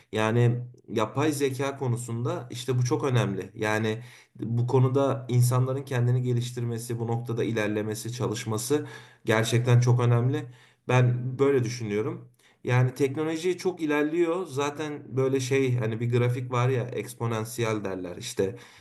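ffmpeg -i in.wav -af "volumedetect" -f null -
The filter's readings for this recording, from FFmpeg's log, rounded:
mean_volume: -26.2 dB
max_volume: -6.8 dB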